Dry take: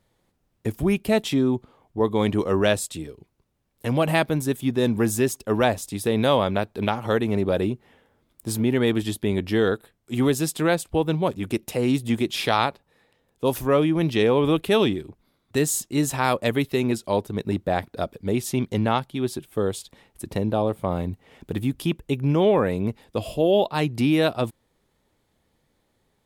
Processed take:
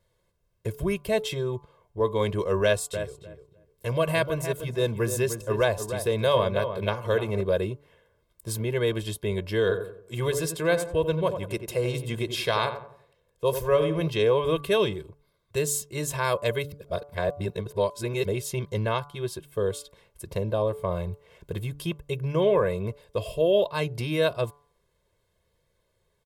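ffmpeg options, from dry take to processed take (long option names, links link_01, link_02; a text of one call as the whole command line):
ffmpeg -i in.wav -filter_complex "[0:a]asettb=1/sr,asplit=3[link_01][link_02][link_03];[link_01]atrim=end=2.634[link_04];[link_02]atrim=start=2.63:end=7.41,asetpts=PTS-STARTPTS,afade=type=in:duration=0.004:curve=qsin,afade=type=out:start_time=4.776:duration=0.004:curve=qsin,asplit=2[link_05][link_06];[link_06]adelay=302,lowpass=frequency=1700:poles=1,volume=-8.5dB,asplit=2[link_07][link_08];[link_08]adelay=302,lowpass=frequency=1700:poles=1,volume=0.18,asplit=2[link_09][link_10];[link_10]adelay=302,lowpass=frequency=1700:poles=1,volume=0.18[link_11];[link_05][link_07][link_09][link_11]amix=inputs=4:normalize=0,atrim=end_sample=210798[link_12];[link_03]atrim=start=7.406[link_13];[link_04][link_12]acrossfade=duration=0.004:curve1=hsin:curve2=qsin[link_14];[link_14][link_13]acrossfade=duration=0.004:curve1=qsin:curve2=hsin,asettb=1/sr,asplit=3[link_15][link_16][link_17];[link_15]atrim=end=9.604[link_18];[link_16]atrim=start=9.6:end=14.08,asetpts=PTS-STARTPTS,afade=type=in:duration=0.004:curve=qsin,afade=type=out:start_time=4.476:duration=0.004:curve=qsin,asplit=2[link_19][link_20];[link_20]adelay=89,lowpass=frequency=1400:poles=1,volume=-8dB,asplit=2[link_21][link_22];[link_22]adelay=89,lowpass=frequency=1400:poles=1,volume=0.43,asplit=2[link_23][link_24];[link_24]adelay=89,lowpass=frequency=1400:poles=1,volume=0.43,asplit=2[link_25][link_26];[link_26]adelay=89,lowpass=frequency=1400:poles=1,volume=0.43,asplit=2[link_27][link_28];[link_28]adelay=89,lowpass=frequency=1400:poles=1,volume=0.43[link_29];[link_19][link_21][link_23][link_25][link_27][link_29]amix=inputs=6:normalize=0,atrim=end_sample=197568[link_30];[link_17]atrim=start=14.076[link_31];[link_18][link_30]acrossfade=duration=0.004:curve1=hsin:curve2=qsin[link_32];[link_32][link_31]acrossfade=duration=0.004:curve1=qsin:curve2=hsin,asplit=3[link_33][link_34][link_35];[link_33]atrim=end=16.722[link_36];[link_34]atrim=start=16.718:end=18.252,asetpts=PTS-STARTPTS,areverse[link_37];[link_35]atrim=start=18.248[link_38];[link_36][link_37]acrossfade=duration=0.004:curve1=hsin:curve2=hsin[link_39];[link_39][link_38]acrossfade=duration=0.004:curve1=hsin:curve2=hsin,aecho=1:1:1.9:1,bandreject=frequency=144.4:width_type=h:width=4,bandreject=frequency=288.8:width_type=h:width=4,bandreject=frequency=433.2:width_type=h:width=4,bandreject=frequency=577.6:width_type=h:width=4,bandreject=frequency=722:width_type=h:width=4,bandreject=frequency=866.4:width_type=h:width=4,bandreject=frequency=1010.8:width_type=h:width=4,bandreject=frequency=1155.2:width_type=h:width=4,bandreject=frequency=1299.6:width_type=h:width=4,bandreject=frequency=1444:width_type=h:width=4,volume=-6dB" out.wav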